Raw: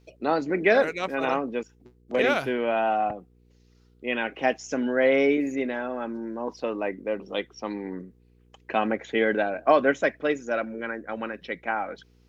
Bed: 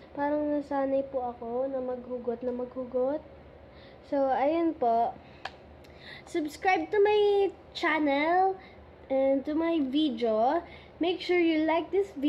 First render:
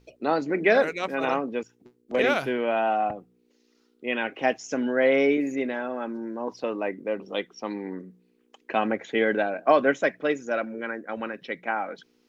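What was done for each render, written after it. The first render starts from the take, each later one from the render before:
hum removal 60 Hz, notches 3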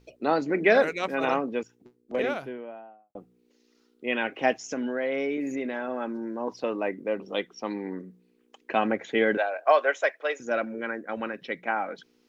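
0:01.55–0:03.15: fade out and dull
0:04.56–0:05.88: downward compressor 3 to 1, threshold −27 dBFS
0:09.37–0:10.40: high-pass filter 510 Hz 24 dB per octave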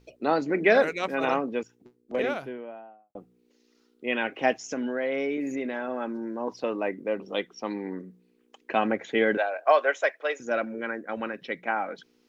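no processing that can be heard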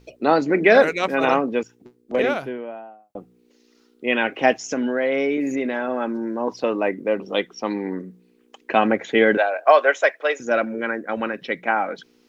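level +7 dB
brickwall limiter −3 dBFS, peak gain reduction 2.5 dB

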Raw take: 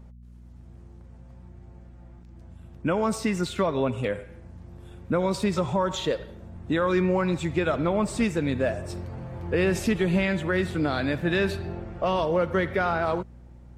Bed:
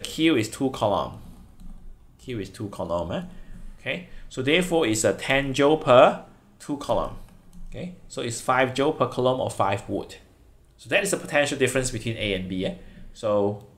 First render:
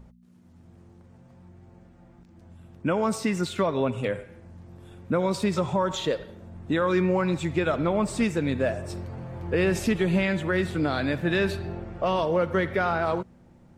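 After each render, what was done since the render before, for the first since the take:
hum removal 60 Hz, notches 2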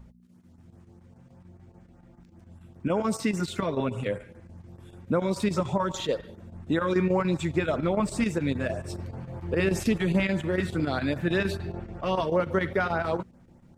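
square-wave tremolo 6.9 Hz, depth 60%, duty 85%
auto-filter notch saw up 5 Hz 330–4,600 Hz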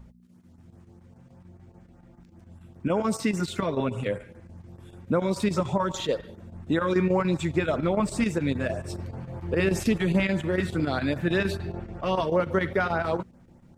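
level +1 dB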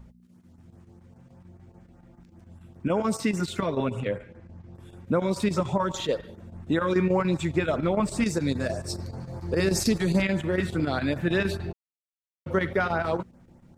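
0:04.00–0:04.75: high-frequency loss of the air 92 metres
0:08.26–0:10.22: high shelf with overshoot 3,700 Hz +6 dB, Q 3
0:11.73–0:12.46: silence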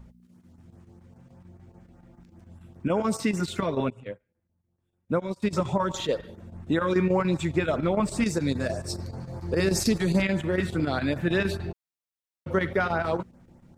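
0:03.90–0:05.53: expander for the loud parts 2.5 to 1, over −41 dBFS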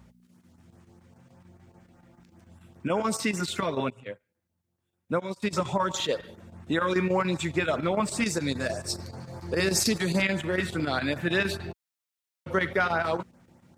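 high-pass filter 70 Hz
tilt shelving filter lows −4 dB, about 770 Hz

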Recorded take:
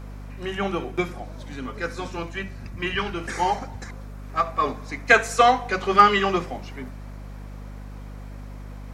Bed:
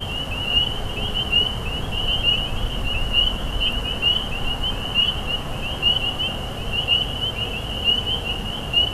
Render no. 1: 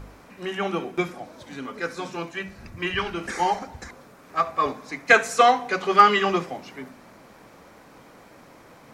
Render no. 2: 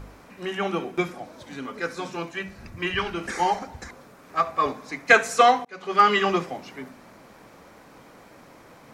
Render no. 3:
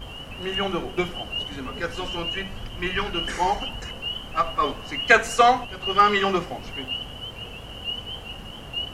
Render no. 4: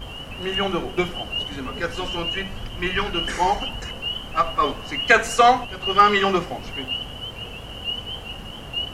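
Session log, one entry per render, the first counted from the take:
hum removal 50 Hz, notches 5
0:05.65–0:06.16: fade in
mix in bed −11.5 dB
level +2.5 dB; brickwall limiter −3 dBFS, peak gain reduction 2.5 dB

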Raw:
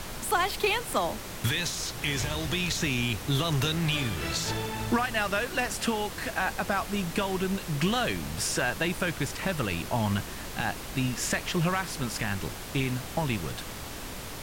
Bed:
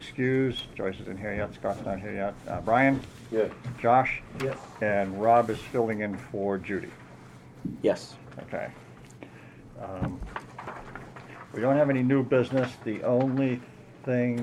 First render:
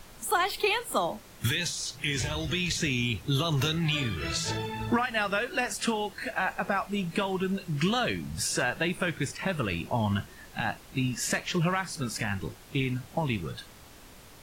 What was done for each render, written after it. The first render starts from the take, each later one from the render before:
noise reduction from a noise print 12 dB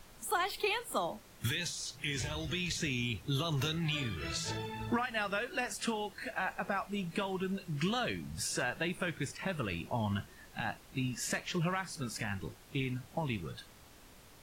level −6.5 dB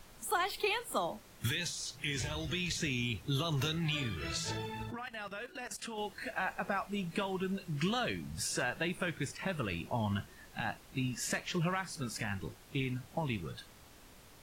0:04.83–0:05.98: output level in coarse steps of 14 dB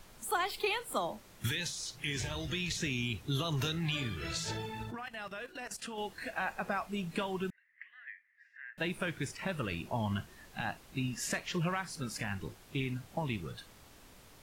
0:07.50–0:08.78: flat-topped band-pass 1,900 Hz, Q 5.8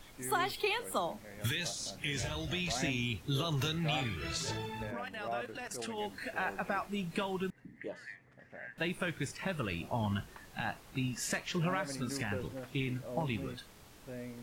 mix in bed −18.5 dB

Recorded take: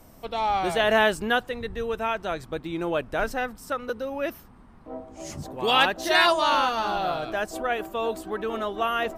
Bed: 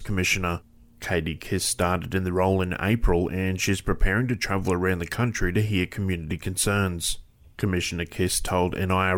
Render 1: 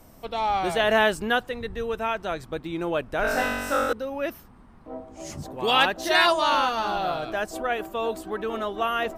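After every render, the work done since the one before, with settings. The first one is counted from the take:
0:03.22–0:03.93: flutter between parallel walls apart 3.6 metres, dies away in 1.5 s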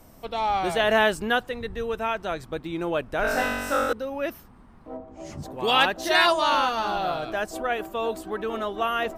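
0:04.96–0:05.42: low-pass filter 1,300 Hz → 3,300 Hz 6 dB per octave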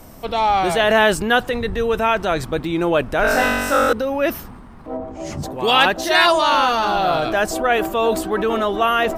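transient designer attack −1 dB, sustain +5 dB
in parallel at +2.5 dB: speech leveller within 4 dB 0.5 s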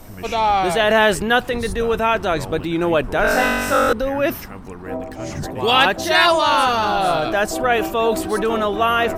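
mix in bed −11.5 dB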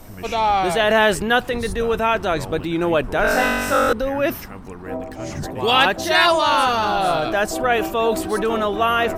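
level −1 dB

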